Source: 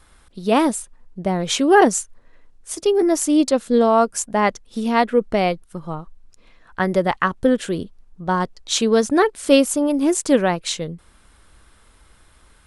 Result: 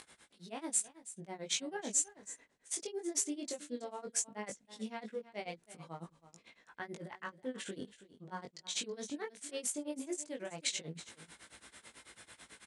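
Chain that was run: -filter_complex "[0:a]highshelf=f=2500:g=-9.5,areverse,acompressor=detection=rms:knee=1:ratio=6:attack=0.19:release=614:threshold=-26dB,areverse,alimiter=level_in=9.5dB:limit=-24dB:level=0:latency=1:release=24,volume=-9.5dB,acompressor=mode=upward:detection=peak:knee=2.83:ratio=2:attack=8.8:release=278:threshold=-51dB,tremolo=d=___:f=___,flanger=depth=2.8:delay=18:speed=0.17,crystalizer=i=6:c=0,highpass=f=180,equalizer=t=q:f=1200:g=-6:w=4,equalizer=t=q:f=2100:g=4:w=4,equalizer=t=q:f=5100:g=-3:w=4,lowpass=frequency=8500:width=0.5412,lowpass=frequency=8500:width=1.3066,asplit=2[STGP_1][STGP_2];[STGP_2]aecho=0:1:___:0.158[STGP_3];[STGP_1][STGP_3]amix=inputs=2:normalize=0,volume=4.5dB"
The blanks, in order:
0.98, 9.1, 325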